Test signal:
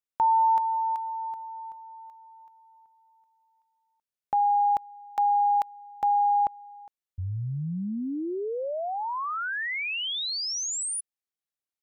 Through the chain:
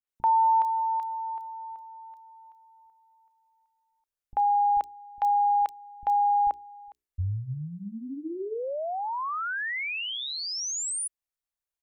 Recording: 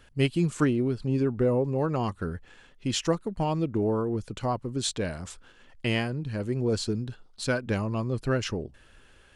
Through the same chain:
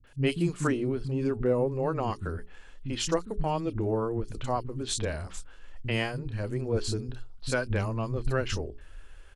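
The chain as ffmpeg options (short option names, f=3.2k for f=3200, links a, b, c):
-filter_complex "[0:a]bandreject=f=60:t=h:w=6,bandreject=f=120:t=h:w=6,bandreject=f=180:t=h:w=6,bandreject=f=240:t=h:w=6,bandreject=f=300:t=h:w=6,bandreject=f=360:t=h:w=6,bandreject=f=420:t=h:w=6,asubboost=boost=5:cutoff=69,acrossover=split=220|3800[a][b][c];[b]adelay=40[d];[c]adelay=70[e];[a][d][e]amix=inputs=3:normalize=0"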